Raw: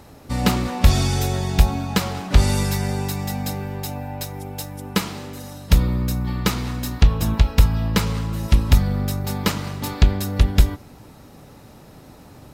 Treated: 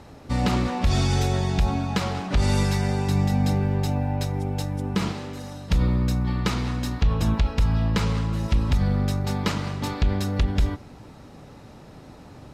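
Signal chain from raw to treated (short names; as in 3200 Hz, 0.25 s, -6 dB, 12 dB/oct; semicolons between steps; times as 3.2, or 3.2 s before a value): 3.08–5.12 low shelf 400 Hz +7.5 dB; limiter -12 dBFS, peak gain reduction 10 dB; air absorption 57 m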